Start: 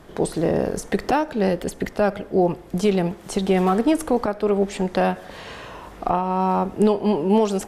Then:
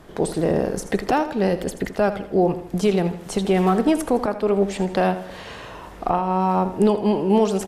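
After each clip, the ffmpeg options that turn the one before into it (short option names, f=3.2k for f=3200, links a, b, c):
-af "aecho=1:1:81|162|243|324:0.224|0.0963|0.0414|0.0178"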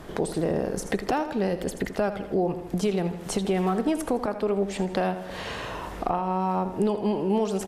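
-af "acompressor=threshold=-34dB:ratio=2,volume=4dB"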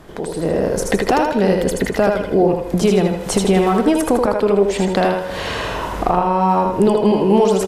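-af "aecho=1:1:79|158|237|316|395:0.631|0.227|0.0818|0.0294|0.0106,dynaudnorm=f=210:g=5:m=11dB"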